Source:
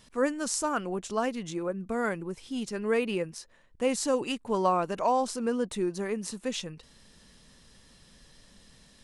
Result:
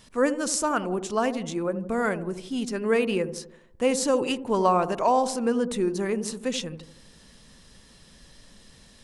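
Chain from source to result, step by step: dark delay 82 ms, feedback 49%, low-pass 730 Hz, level -9 dB; gain +4 dB

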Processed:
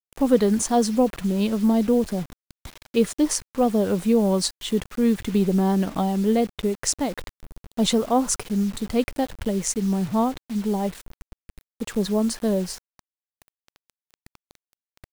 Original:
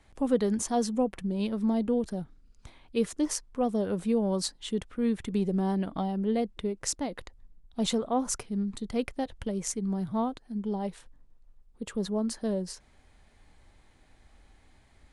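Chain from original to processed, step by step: bit-crush 8-bit; gain +7.5 dB

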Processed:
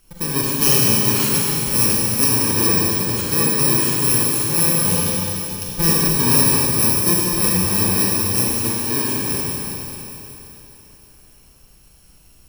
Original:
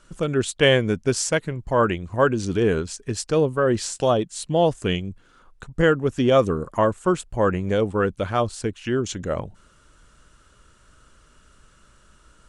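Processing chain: FFT order left unsorted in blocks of 64 samples; 5.06–5.75 resonant high shelf 2400 Hz +9 dB, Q 3; Schroeder reverb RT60 3.6 s, combs from 33 ms, DRR -4 dB; gain -1 dB

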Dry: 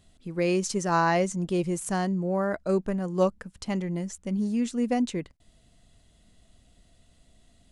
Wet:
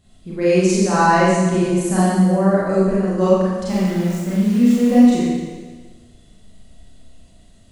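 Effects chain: low shelf 490 Hz +4.5 dB; 3.65–4.93 sample gate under -35 dBFS; Schroeder reverb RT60 1.4 s, combs from 29 ms, DRR -9 dB; gain -1.5 dB

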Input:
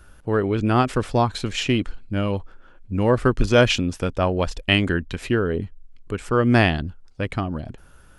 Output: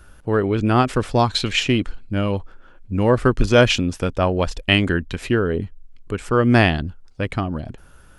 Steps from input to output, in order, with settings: 1.18–1.58 bell 7200 Hz -> 2200 Hz +9 dB 1.5 oct; gain +2 dB

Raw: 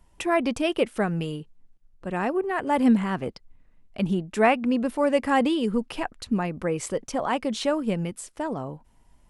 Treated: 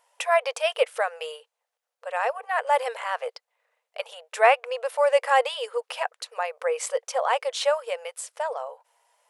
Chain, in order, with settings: brick-wall FIR high-pass 450 Hz; gain +3 dB

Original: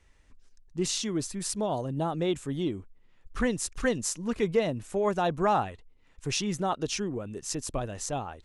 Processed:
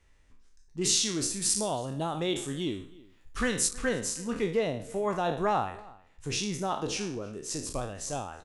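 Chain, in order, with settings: spectral trails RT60 0.49 s; 0.81–3.69 high shelf 2300 Hz +9 dB; outdoor echo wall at 55 m, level -22 dB; gain -3.5 dB

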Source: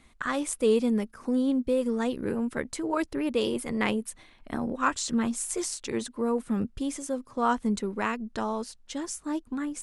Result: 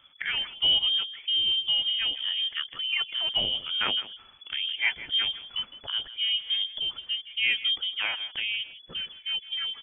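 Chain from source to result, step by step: bin magnitudes rounded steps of 15 dB; inverted band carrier 3400 Hz; echo 0.161 s -15.5 dB

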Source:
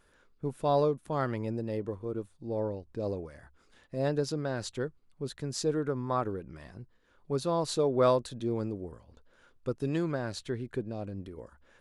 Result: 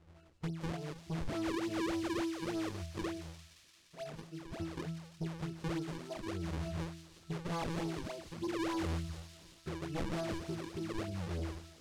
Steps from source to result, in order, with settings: 3.02–4.6 pre-emphasis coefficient 0.9; compressor 5:1, threshold -38 dBFS, peak gain reduction 16.5 dB; octave resonator E, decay 0.64 s; sine folder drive 14 dB, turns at -40 dBFS; decimation with a swept rate 38×, swing 160% 3.4 Hz; air absorption 53 m; thin delay 0.173 s, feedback 78%, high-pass 4000 Hz, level -5 dB; gain +7.5 dB

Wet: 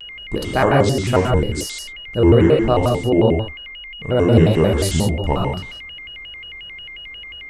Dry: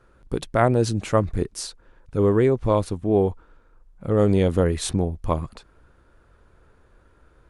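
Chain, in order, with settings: non-linear reverb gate 0.22 s flat, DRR -1 dB; whine 2500 Hz -34 dBFS; shaped vibrato square 5.6 Hz, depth 250 cents; gain +1.5 dB

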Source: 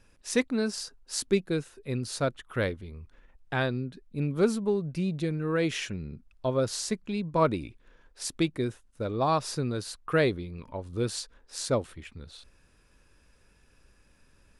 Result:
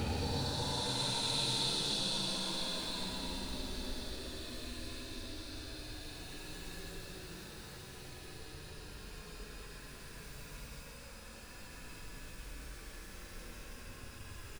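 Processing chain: frequency-shifting echo 96 ms, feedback 60%, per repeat +58 Hz, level -11.5 dB; crackle 270/s -50 dBFS; Paulstretch 18×, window 0.10 s, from 12.27; gain +12 dB

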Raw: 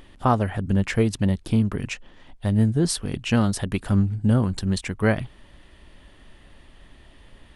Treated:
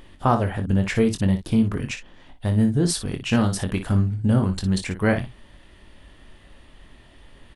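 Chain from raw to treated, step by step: early reflections 22 ms -8 dB, 58 ms -10 dB

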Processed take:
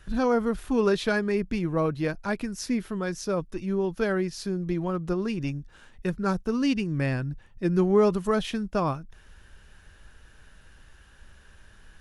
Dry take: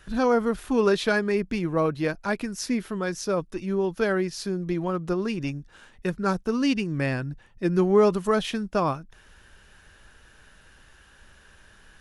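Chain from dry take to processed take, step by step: low shelf 150 Hz +8 dB; gain -3 dB

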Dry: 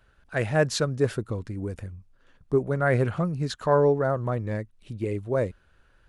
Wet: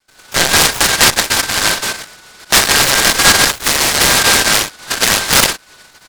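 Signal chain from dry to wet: four-band scrambler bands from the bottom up 2143; steep high-pass 470 Hz 72 dB/oct; gate with hold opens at -52 dBFS; tilt -3 dB/oct; 2.62–4.94 negative-ratio compressor -28 dBFS, ratio -1; early reflections 39 ms -9.5 dB, 50 ms -7 dB; LPC vocoder at 8 kHz pitch kept; maximiser +17 dB; noise-modulated delay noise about 2700 Hz, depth 0.15 ms

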